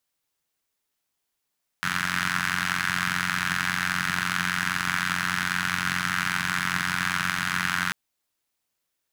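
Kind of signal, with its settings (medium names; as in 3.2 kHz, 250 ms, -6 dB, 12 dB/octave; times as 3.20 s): four-cylinder engine model, steady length 6.09 s, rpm 2700, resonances 160/1500 Hz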